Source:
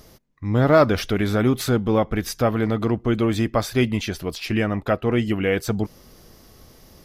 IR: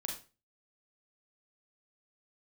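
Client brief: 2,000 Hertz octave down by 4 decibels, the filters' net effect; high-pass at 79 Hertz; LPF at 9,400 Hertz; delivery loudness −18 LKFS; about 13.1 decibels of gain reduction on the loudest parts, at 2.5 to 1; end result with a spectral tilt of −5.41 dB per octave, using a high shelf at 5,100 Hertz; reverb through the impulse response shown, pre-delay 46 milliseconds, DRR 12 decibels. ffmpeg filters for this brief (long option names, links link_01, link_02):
-filter_complex "[0:a]highpass=79,lowpass=9400,equalizer=frequency=2000:width_type=o:gain=-6.5,highshelf=frequency=5100:gain=8,acompressor=threshold=-31dB:ratio=2.5,asplit=2[link_01][link_02];[1:a]atrim=start_sample=2205,adelay=46[link_03];[link_02][link_03]afir=irnorm=-1:irlink=0,volume=-12dB[link_04];[link_01][link_04]amix=inputs=2:normalize=0,volume=13dB"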